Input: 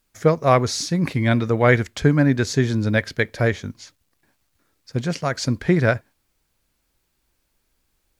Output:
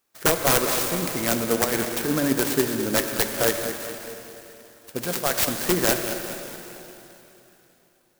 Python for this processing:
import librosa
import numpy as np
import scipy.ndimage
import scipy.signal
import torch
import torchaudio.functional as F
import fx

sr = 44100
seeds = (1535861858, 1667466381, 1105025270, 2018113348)

y = scipy.signal.sosfilt(scipy.signal.butter(2, 330.0, 'highpass', fs=sr, output='sos'), x)
y = fx.over_compress(y, sr, threshold_db=-23.0, ratio=-1.0, at=(1.64, 2.48))
y = fx.high_shelf(y, sr, hz=3800.0, db=11.0, at=(4.97, 5.72))
y = (np.mod(10.0 ** (11.0 / 20.0) * y + 1.0, 2.0) - 1.0) / 10.0 ** (11.0 / 20.0)
y = fx.echo_feedback(y, sr, ms=208, feedback_pct=50, wet_db=-12.0)
y = fx.rev_plate(y, sr, seeds[0], rt60_s=3.4, hf_ratio=0.95, predelay_ms=0, drr_db=5.5)
y = fx.clock_jitter(y, sr, seeds[1], jitter_ms=0.096)